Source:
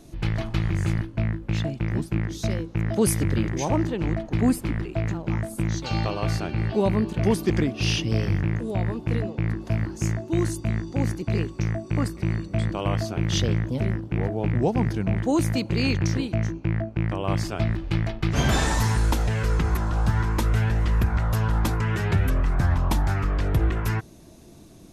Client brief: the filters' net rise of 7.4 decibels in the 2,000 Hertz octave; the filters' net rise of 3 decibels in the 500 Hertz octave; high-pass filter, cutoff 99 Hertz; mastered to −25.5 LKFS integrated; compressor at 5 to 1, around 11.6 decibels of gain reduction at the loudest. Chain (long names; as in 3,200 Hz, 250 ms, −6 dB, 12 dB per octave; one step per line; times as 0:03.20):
high-pass filter 99 Hz
parametric band 500 Hz +3.5 dB
parametric band 2,000 Hz +9 dB
downward compressor 5 to 1, threshold −28 dBFS
level +6.5 dB